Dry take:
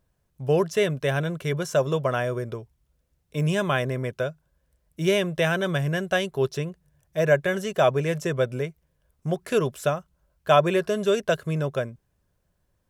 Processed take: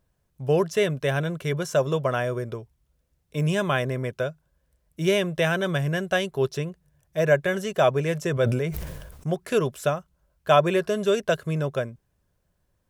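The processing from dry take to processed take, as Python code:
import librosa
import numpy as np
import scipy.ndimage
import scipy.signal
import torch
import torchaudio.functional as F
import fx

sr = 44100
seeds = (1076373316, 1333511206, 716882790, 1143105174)

y = fx.sustainer(x, sr, db_per_s=40.0, at=(8.25, 9.28))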